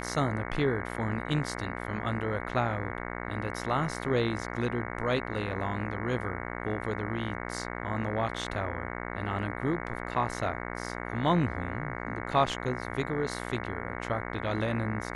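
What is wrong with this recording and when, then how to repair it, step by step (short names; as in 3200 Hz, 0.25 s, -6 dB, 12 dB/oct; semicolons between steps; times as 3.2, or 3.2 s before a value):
buzz 60 Hz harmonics 37 -37 dBFS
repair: de-hum 60 Hz, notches 37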